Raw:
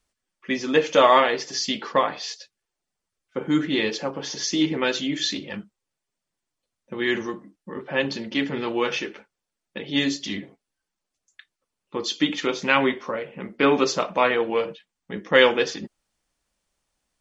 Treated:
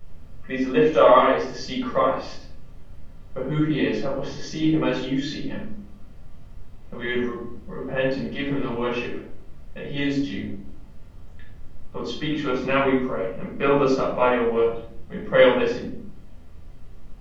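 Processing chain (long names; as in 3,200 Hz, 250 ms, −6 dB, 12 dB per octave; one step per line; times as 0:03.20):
low-pass filter 1,500 Hz 6 dB per octave
background noise brown −46 dBFS
convolution reverb RT60 0.65 s, pre-delay 9 ms, DRR −4.5 dB
level −7 dB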